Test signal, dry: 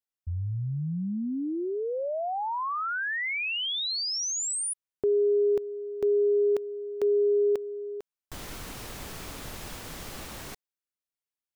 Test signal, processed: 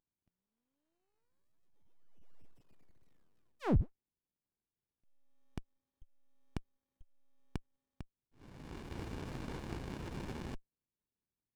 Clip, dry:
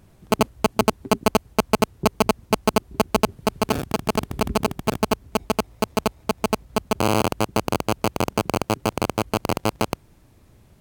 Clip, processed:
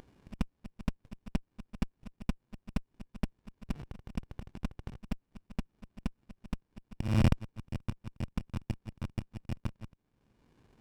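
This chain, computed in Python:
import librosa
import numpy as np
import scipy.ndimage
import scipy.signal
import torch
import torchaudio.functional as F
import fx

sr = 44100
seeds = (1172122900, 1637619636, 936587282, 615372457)

y = fx.ladder_highpass(x, sr, hz=730.0, resonance_pct=35)
y = fx.freq_invert(y, sr, carrier_hz=3600)
y = fx.auto_swell(y, sr, attack_ms=737.0)
y = fx.running_max(y, sr, window=65)
y = y * 10.0 ** (13.5 / 20.0)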